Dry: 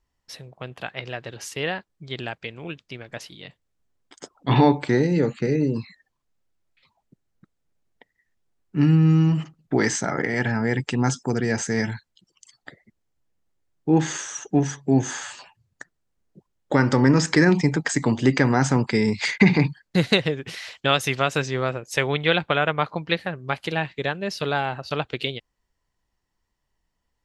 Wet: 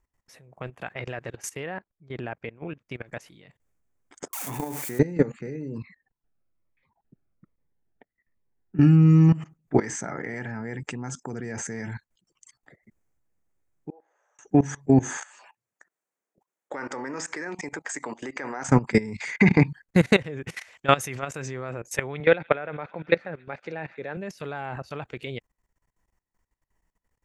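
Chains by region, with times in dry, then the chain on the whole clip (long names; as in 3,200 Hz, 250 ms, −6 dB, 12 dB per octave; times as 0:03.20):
0:01.66–0:02.87: low-pass filter 1,500 Hz 6 dB per octave + low-shelf EQ 130 Hz −2.5 dB
0:04.33–0:04.99: spike at every zero crossing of −12.5 dBFS + low-shelf EQ 76 Hz −9.5 dB + downward compressor 2 to 1, threshold −19 dBFS
0:05.78–0:09.29: low-pass that shuts in the quiet parts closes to 2,200 Hz, open at −17 dBFS + phaser whose notches keep moving one way falling 1.2 Hz
0:13.90–0:14.39: flat-topped band-pass 570 Hz, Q 1.9 + first difference + one half of a high-frequency compander encoder only
0:15.17–0:18.69: high-pass filter 460 Hz + downward compressor 2 to 1, threshold −34 dBFS
0:22.20–0:24.17: loudspeaker in its box 180–5,500 Hz, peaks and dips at 520 Hz +5 dB, 1,100 Hz −5 dB, 3,100 Hz −9 dB + delay with a high-pass on its return 140 ms, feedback 83%, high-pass 1,800 Hz, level −22.5 dB
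whole clip: flat-topped bell 3,900 Hz −8.5 dB 1.1 octaves; notch filter 4,000 Hz, Q 20; output level in coarse steps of 19 dB; level +4.5 dB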